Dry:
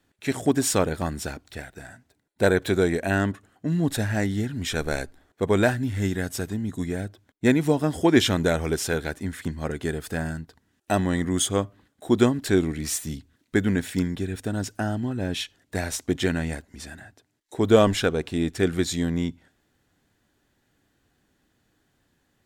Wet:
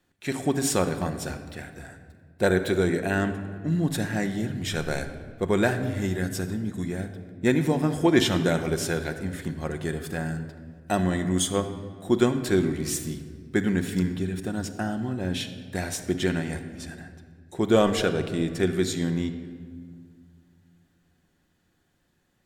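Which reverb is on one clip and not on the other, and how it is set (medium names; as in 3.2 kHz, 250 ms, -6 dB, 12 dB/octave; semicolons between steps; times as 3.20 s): simulated room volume 2700 m³, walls mixed, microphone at 0.93 m; trim -2.5 dB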